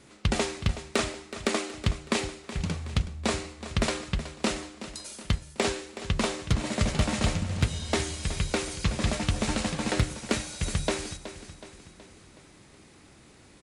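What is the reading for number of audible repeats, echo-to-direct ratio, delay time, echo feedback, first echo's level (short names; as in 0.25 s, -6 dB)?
4, -11.5 dB, 0.372 s, 52%, -13.0 dB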